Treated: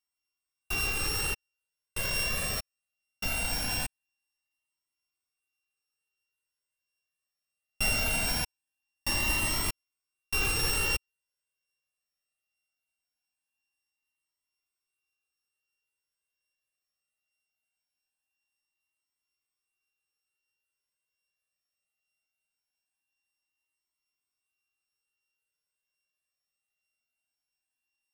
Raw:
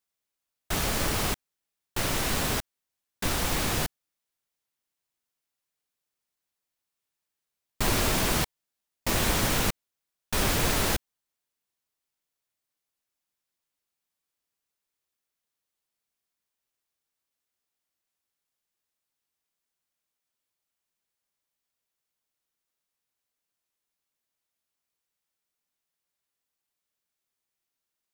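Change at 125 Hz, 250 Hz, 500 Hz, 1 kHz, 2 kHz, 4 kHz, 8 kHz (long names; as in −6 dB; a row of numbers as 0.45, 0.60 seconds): −6.5, −9.5, −8.5, −7.5, +0.5, −1.5, −2.5 decibels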